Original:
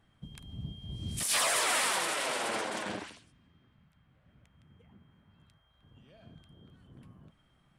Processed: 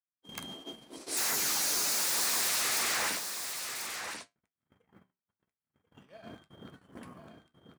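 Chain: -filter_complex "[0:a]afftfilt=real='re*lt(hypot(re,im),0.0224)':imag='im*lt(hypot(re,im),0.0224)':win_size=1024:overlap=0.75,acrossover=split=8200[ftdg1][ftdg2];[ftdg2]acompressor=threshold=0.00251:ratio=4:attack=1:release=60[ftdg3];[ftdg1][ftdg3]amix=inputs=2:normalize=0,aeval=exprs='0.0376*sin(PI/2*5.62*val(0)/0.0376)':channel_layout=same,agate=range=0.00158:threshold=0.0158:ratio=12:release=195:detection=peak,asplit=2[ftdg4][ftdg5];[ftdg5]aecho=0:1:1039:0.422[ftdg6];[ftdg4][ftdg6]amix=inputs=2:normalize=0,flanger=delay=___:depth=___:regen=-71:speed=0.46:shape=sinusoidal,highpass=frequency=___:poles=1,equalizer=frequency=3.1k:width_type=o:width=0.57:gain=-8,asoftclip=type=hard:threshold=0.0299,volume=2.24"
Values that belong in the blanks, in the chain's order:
9.3, 5.5, 570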